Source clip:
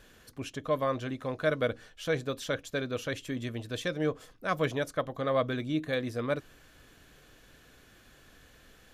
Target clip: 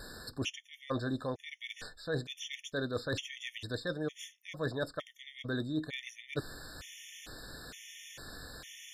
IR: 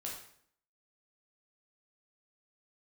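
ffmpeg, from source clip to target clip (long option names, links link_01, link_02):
-filter_complex "[0:a]acrossover=split=4800[link_01][link_02];[link_02]acompressor=threshold=-59dB:ratio=4:attack=1:release=60[link_03];[link_01][link_03]amix=inputs=2:normalize=0,equalizer=frequency=5600:width_type=o:width=2.1:gain=8.5,areverse,acompressor=threshold=-39dB:ratio=16,areverse,volume=33dB,asoftclip=hard,volume=-33dB,afftfilt=real='re*gt(sin(2*PI*1.1*pts/sr)*(1-2*mod(floor(b*sr/1024/1800),2)),0)':imag='im*gt(sin(2*PI*1.1*pts/sr)*(1-2*mod(floor(b*sr/1024/1800),2)),0)':win_size=1024:overlap=0.75,volume=9dB"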